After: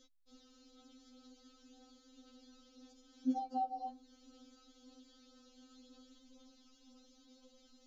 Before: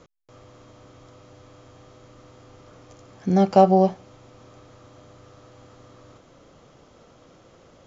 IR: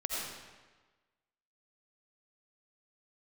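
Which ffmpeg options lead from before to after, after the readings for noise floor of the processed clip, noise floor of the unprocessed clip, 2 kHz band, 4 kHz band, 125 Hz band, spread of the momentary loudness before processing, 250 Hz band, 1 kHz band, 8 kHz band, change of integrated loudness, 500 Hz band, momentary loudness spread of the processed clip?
-67 dBFS, -54 dBFS, under -20 dB, -13.5 dB, under -40 dB, 9 LU, -18.5 dB, -17.5 dB, no reading, -21.0 dB, -35.5 dB, 11 LU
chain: -filter_complex "[0:a]equalizer=f=500:t=o:w=1:g=-7,equalizer=f=1000:t=o:w=1:g=-9,equalizer=f=2000:t=o:w=1:g=-11,equalizer=f=4000:t=o:w=1:g=11,acrossover=split=500|880[s0][s1][s2];[s2]acompressor=threshold=0.00178:ratio=10[s3];[s0][s1][s3]amix=inputs=3:normalize=0,flanger=delay=3.2:depth=1.5:regen=46:speed=0.97:shape=triangular,afftfilt=real='re*3.46*eq(mod(b,12),0)':imag='im*3.46*eq(mod(b,12),0)':win_size=2048:overlap=0.75,volume=0.75"

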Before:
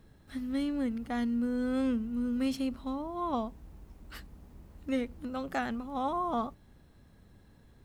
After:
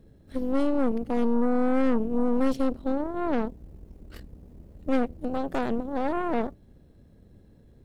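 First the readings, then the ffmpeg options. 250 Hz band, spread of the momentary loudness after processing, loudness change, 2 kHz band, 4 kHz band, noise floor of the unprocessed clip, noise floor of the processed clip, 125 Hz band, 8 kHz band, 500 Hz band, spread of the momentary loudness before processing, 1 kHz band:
+5.5 dB, 11 LU, +6.0 dB, +3.5 dB, -1.5 dB, -60 dBFS, -56 dBFS, +5.5 dB, no reading, +10.0 dB, 13 LU, +3.0 dB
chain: -af "lowshelf=f=710:t=q:w=1.5:g=8.5,aeval=exprs='0.266*(cos(1*acos(clip(val(0)/0.266,-1,1)))-cos(1*PI/2))+0.0531*(cos(4*acos(clip(val(0)/0.266,-1,1)))-cos(4*PI/2))+0.0335*(cos(8*acos(clip(val(0)/0.266,-1,1)))-cos(8*PI/2))':c=same,volume=0.596"

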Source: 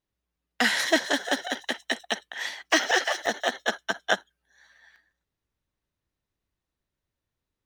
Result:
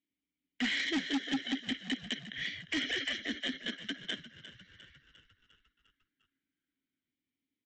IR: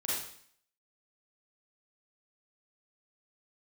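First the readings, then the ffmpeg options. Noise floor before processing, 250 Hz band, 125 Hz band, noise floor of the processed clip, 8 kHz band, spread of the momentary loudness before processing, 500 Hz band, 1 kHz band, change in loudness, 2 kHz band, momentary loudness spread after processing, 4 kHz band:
under -85 dBFS, -2.0 dB, no reading, under -85 dBFS, -16.0 dB, 9 LU, -18.5 dB, -19.0 dB, -8.5 dB, -10.5 dB, 10 LU, -6.0 dB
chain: -filter_complex "[0:a]alimiter=limit=0.158:level=0:latency=1:release=35,asplit=3[s0][s1][s2];[s0]bandpass=f=270:t=q:w=8,volume=1[s3];[s1]bandpass=f=2290:t=q:w=8,volume=0.501[s4];[s2]bandpass=f=3010:t=q:w=8,volume=0.355[s5];[s3][s4][s5]amix=inputs=3:normalize=0,aresample=16000,asoftclip=type=hard:threshold=0.015,aresample=44100,asplit=7[s6][s7][s8][s9][s10][s11][s12];[s7]adelay=352,afreqshift=-46,volume=0.2[s13];[s8]adelay=704,afreqshift=-92,volume=0.112[s14];[s9]adelay=1056,afreqshift=-138,volume=0.0624[s15];[s10]adelay=1408,afreqshift=-184,volume=0.0351[s16];[s11]adelay=1760,afreqshift=-230,volume=0.0197[s17];[s12]adelay=2112,afreqshift=-276,volume=0.011[s18];[s6][s13][s14][s15][s16][s17][s18]amix=inputs=7:normalize=0,volume=2.82"

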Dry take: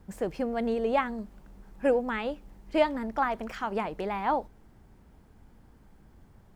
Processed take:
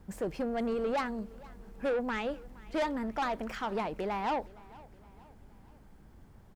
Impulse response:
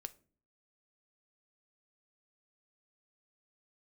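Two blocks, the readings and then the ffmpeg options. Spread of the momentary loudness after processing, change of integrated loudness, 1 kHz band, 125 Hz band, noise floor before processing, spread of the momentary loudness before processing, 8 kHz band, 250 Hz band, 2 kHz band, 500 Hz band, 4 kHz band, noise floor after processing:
18 LU, -4.0 dB, -4.0 dB, -1.5 dB, -57 dBFS, 8 LU, no reading, -3.0 dB, -3.5 dB, -4.5 dB, -1.5 dB, -56 dBFS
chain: -filter_complex "[0:a]asoftclip=type=tanh:threshold=0.0473,asplit=2[s0][s1];[s1]aecho=0:1:467|934|1401:0.0794|0.0389|0.0191[s2];[s0][s2]amix=inputs=2:normalize=0"

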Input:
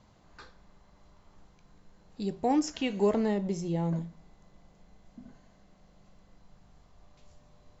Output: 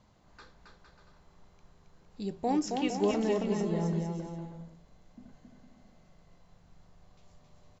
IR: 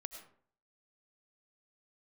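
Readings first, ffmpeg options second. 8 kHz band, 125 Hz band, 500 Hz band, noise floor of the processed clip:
no reading, -0.5 dB, -0.5 dB, -63 dBFS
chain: -af "aecho=1:1:270|459|591.3|683.9|748.7:0.631|0.398|0.251|0.158|0.1,volume=0.708"

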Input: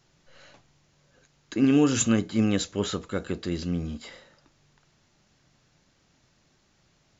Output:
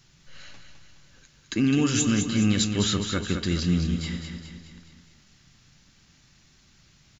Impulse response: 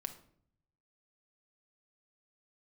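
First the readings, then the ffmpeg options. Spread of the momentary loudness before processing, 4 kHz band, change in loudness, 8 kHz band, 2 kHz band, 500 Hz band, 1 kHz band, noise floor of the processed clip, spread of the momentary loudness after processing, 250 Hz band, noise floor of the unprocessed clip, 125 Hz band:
13 LU, +6.5 dB, +1.0 dB, no reading, +3.5 dB, -3.5 dB, 0.0 dB, -59 dBFS, 13 LU, +0.5 dB, -67 dBFS, +5.0 dB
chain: -filter_complex "[0:a]equalizer=f=570:t=o:w=2.2:g=-13.5,alimiter=limit=0.075:level=0:latency=1:release=118,aecho=1:1:209|418|627|836|1045|1254:0.447|0.237|0.125|0.0665|0.0352|0.0187,asplit=2[s0][s1];[1:a]atrim=start_sample=2205,lowpass=6900[s2];[s1][s2]afir=irnorm=-1:irlink=0,volume=0.316[s3];[s0][s3]amix=inputs=2:normalize=0,volume=2.37"

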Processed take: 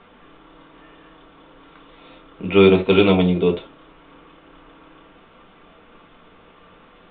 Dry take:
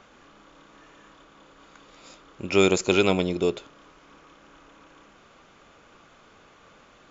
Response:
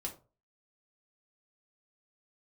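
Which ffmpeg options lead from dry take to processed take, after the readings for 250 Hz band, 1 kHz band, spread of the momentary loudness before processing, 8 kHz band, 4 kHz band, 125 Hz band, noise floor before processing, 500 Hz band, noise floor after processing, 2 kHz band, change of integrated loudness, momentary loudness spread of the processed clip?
+8.0 dB, +5.0 dB, 15 LU, no reading, +3.5 dB, +10.0 dB, -55 dBFS, +7.0 dB, -50 dBFS, +3.0 dB, +6.5 dB, 13 LU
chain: -filter_complex "[0:a]aresample=8000,aresample=44100[s0];[1:a]atrim=start_sample=2205,atrim=end_sample=3969[s1];[s0][s1]afir=irnorm=-1:irlink=0,volume=1.78"

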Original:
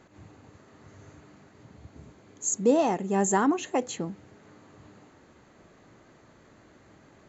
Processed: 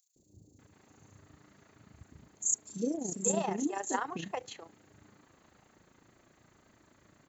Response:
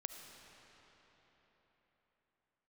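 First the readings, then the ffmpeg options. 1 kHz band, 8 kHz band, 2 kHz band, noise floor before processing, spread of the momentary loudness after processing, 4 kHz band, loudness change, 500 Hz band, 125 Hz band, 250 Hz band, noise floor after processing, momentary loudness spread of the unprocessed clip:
-8.0 dB, no reading, -6.5 dB, -58 dBFS, 11 LU, -5.5 dB, -7.0 dB, -10.0 dB, -7.5 dB, -8.5 dB, -67 dBFS, 12 LU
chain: -filter_complex "[0:a]aemphasis=mode=production:type=50fm,tremolo=f=28:d=0.667,acrossover=split=480|5100[s0][s1][s2];[s0]adelay=160[s3];[s1]adelay=590[s4];[s3][s4][s2]amix=inputs=3:normalize=0,volume=0.631"

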